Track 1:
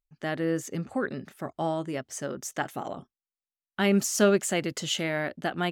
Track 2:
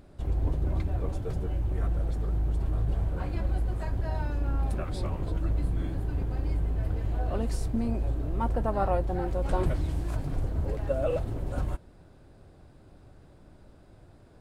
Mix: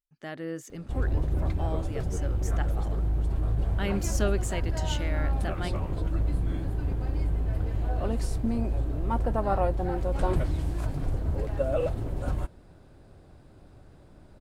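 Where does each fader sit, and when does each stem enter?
-7.5, +1.0 dB; 0.00, 0.70 s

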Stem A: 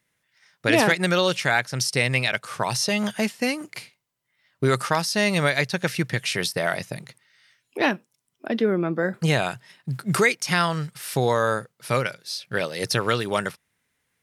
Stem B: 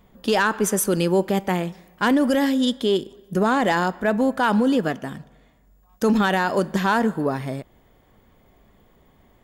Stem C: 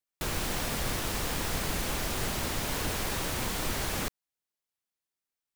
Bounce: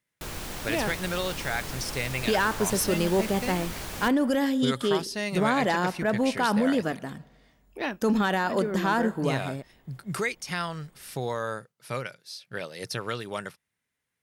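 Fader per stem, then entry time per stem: -9.5, -5.0, -4.5 dB; 0.00, 2.00, 0.00 s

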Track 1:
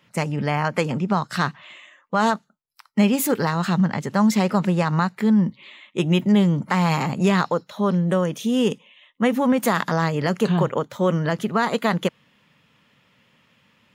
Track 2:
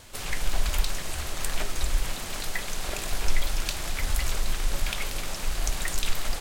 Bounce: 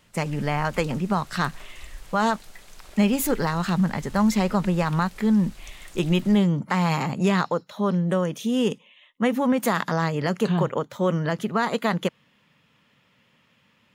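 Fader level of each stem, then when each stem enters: -2.5, -15.5 dB; 0.00, 0.00 s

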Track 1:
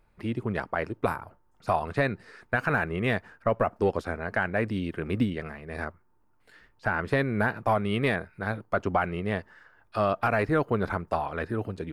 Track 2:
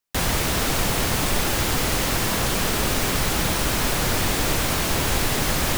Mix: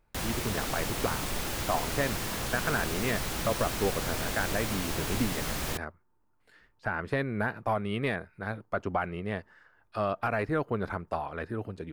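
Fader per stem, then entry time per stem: -4.5, -11.0 dB; 0.00, 0.00 s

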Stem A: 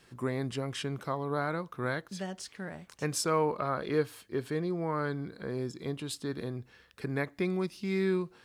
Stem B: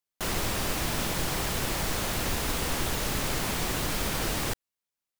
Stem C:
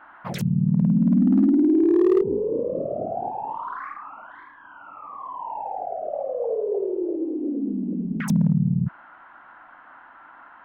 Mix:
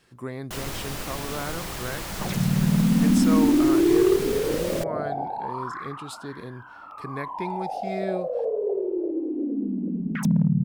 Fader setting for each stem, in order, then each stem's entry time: -1.5, -4.0, -1.0 dB; 0.00, 0.30, 1.95 s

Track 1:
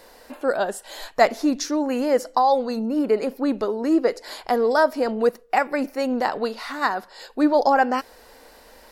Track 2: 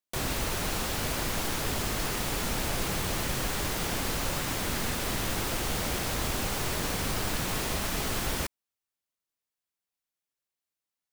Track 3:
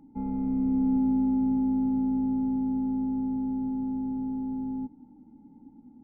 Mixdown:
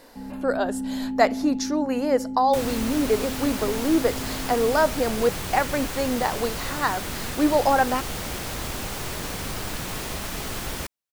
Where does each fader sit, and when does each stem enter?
-2.0, -0.5, -5.0 dB; 0.00, 2.40, 0.00 s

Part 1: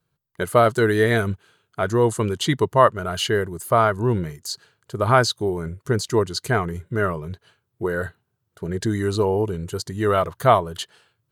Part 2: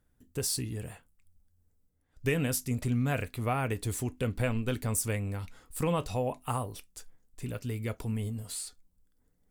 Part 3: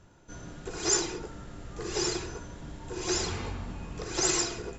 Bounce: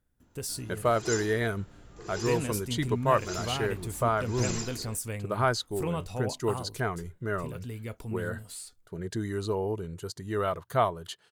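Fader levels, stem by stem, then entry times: -9.5, -4.0, -9.0 dB; 0.30, 0.00, 0.20 s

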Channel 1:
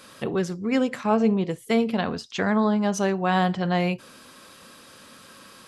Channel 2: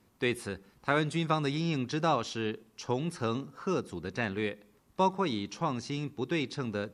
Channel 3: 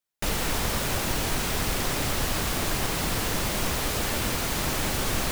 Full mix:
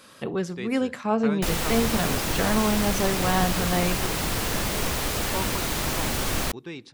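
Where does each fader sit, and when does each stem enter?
-2.5, -6.5, +0.5 dB; 0.00, 0.35, 1.20 s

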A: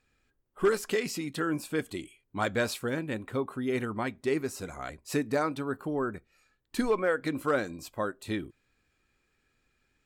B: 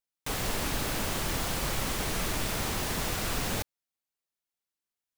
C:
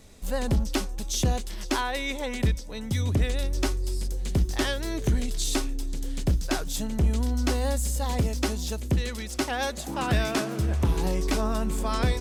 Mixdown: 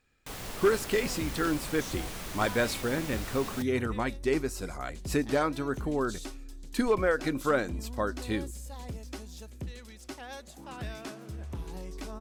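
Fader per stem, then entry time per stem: +1.0, -8.5, -14.5 dB; 0.00, 0.00, 0.70 s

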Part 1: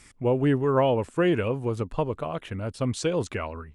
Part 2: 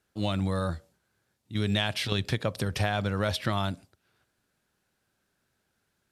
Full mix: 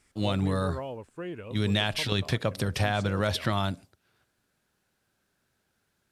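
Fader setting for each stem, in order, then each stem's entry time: -15.0, +1.0 dB; 0.00, 0.00 s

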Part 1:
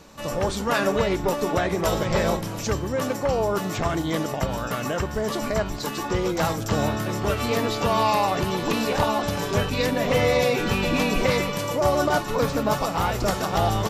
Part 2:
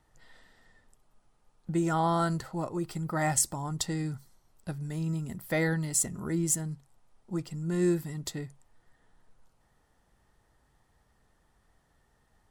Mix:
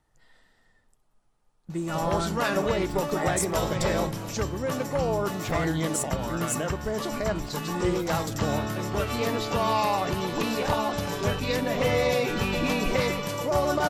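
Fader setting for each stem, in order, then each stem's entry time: -3.5, -3.0 dB; 1.70, 0.00 s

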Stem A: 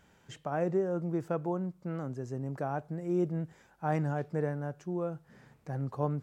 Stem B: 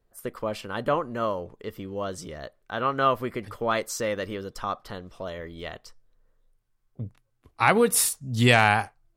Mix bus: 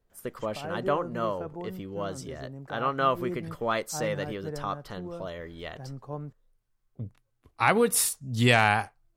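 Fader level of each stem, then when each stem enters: -5.5, -2.5 dB; 0.10, 0.00 s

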